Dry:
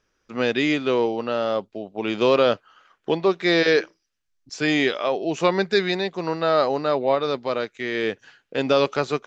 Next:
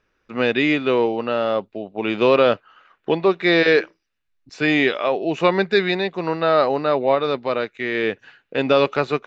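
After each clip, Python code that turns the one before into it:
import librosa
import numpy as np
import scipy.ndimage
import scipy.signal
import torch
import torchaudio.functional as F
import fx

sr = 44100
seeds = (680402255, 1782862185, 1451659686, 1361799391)

y = fx.high_shelf_res(x, sr, hz=4300.0, db=-8.5, q=1.5)
y = fx.notch(y, sr, hz=3200.0, q=10.0)
y = y * 10.0 ** (2.5 / 20.0)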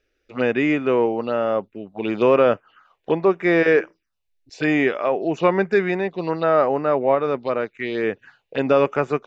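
y = fx.env_phaser(x, sr, low_hz=170.0, high_hz=4100.0, full_db=-17.5)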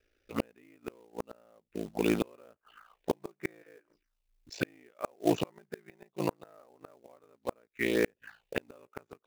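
y = x * np.sin(2.0 * np.pi * 28.0 * np.arange(len(x)) / sr)
y = fx.quant_float(y, sr, bits=2)
y = fx.gate_flip(y, sr, shuts_db=-13.0, range_db=-37)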